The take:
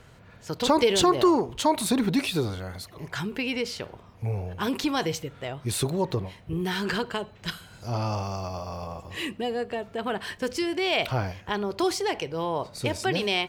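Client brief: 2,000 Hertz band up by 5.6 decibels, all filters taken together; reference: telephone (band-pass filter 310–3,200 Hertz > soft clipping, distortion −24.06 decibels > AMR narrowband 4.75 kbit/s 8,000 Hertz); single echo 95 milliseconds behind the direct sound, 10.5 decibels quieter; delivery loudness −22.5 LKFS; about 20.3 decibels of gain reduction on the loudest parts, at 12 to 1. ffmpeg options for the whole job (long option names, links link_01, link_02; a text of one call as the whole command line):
ffmpeg -i in.wav -af "equalizer=frequency=2000:width_type=o:gain=8,acompressor=threshold=-36dB:ratio=12,highpass=310,lowpass=3200,aecho=1:1:95:0.299,asoftclip=threshold=-27.5dB,volume=22.5dB" -ar 8000 -c:a libopencore_amrnb -b:a 4750 out.amr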